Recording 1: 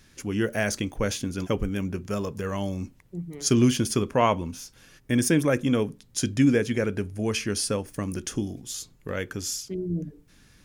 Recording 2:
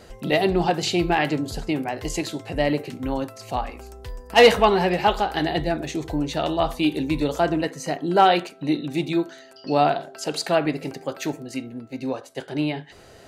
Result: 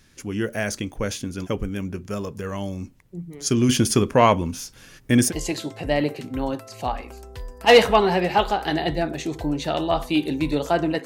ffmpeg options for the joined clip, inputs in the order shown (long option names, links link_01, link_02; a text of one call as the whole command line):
ffmpeg -i cue0.wav -i cue1.wav -filter_complex "[0:a]asettb=1/sr,asplit=3[link_01][link_02][link_03];[link_01]atrim=end=3.694[link_04];[link_02]atrim=start=3.69:end=5.33,asetpts=PTS-STARTPTS,afade=type=in:duration=0.004:curve=qsin,afade=type=out:start_time=1.636:duration=0.004:curve=qsin,acontrast=57[link_05];[link_03]atrim=start=5.326[link_06];[link_04][link_05]acrossfade=duration=0.004:curve1=hsin:curve2=qsin[link_07];[link_07][link_06]acrossfade=duration=0.004:curve1=qsin:curve2=hsin,apad=whole_dur=11.05,atrim=end=11.05,atrim=end=5.33,asetpts=PTS-STARTPTS[link_08];[1:a]atrim=start=1.94:end=7.74,asetpts=PTS-STARTPTS[link_09];[link_08][link_09]acrossfade=duration=0.08:curve1=tri:curve2=tri" out.wav